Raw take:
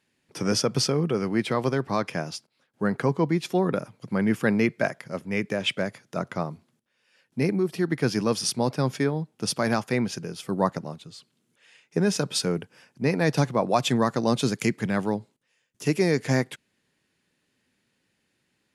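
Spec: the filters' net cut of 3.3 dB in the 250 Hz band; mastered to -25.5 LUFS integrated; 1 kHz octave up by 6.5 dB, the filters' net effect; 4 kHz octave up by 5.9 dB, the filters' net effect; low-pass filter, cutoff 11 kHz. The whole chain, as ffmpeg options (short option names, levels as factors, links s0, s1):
-af "lowpass=11000,equalizer=f=250:t=o:g=-5,equalizer=f=1000:t=o:g=8,equalizer=f=4000:t=o:g=7.5,volume=0.944"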